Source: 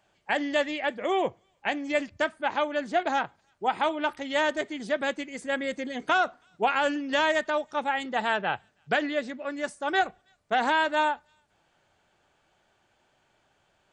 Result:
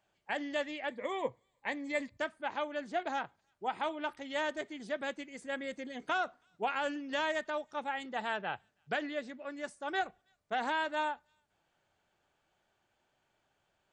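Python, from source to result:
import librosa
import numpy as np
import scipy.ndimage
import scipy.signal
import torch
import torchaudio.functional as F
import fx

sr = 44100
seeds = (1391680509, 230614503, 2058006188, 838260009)

y = fx.ripple_eq(x, sr, per_octave=1.0, db=10, at=(0.91, 2.17))
y = y * 10.0 ** (-9.0 / 20.0)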